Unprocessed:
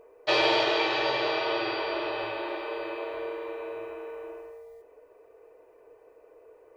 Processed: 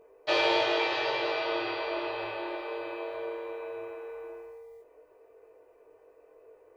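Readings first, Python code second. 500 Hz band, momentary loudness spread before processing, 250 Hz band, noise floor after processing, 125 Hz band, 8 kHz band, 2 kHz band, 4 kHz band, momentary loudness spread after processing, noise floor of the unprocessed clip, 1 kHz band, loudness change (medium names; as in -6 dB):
-2.0 dB, 18 LU, -2.5 dB, -60 dBFS, -5.5 dB, no reading, -2.0 dB, -3.0 dB, 17 LU, -57 dBFS, -2.5 dB, -2.5 dB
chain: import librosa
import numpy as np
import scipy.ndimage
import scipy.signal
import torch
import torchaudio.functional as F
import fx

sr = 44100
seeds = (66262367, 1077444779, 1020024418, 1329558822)

y = fx.doubler(x, sr, ms=20.0, db=-3.0)
y = y * 10.0 ** (-4.5 / 20.0)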